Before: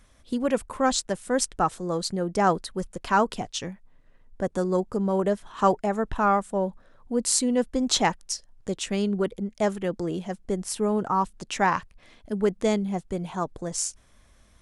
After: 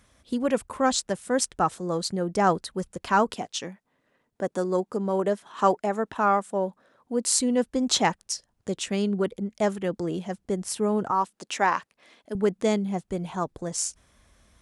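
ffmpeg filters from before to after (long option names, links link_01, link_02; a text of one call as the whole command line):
ffmpeg -i in.wav -af "asetnsamples=nb_out_samples=441:pad=0,asendcmd='3.34 highpass f 210;7.4 highpass f 73;11.11 highpass f 290;12.35 highpass f 90;13.08 highpass f 42',highpass=59" out.wav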